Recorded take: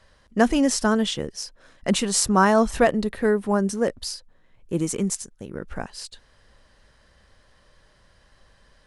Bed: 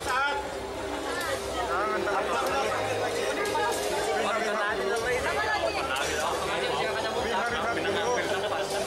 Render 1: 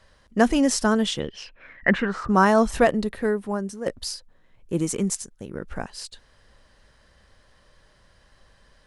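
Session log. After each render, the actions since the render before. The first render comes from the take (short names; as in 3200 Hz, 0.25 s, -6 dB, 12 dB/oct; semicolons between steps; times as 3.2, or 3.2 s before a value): 1.19–2.28 synth low-pass 3600 Hz -> 1200 Hz, resonance Q 12; 2.9–3.86 fade out, to -11 dB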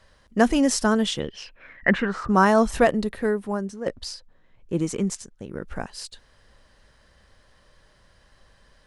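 3.65–5.5 air absorption 60 m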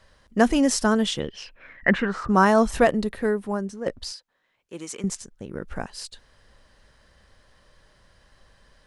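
4.12–5.04 HPF 1300 Hz 6 dB/oct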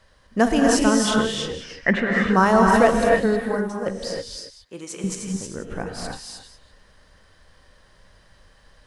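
reverse delay 0.149 s, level -12.5 dB; non-linear reverb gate 0.34 s rising, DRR 0 dB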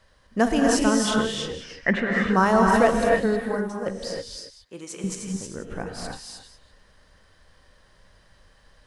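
gain -2.5 dB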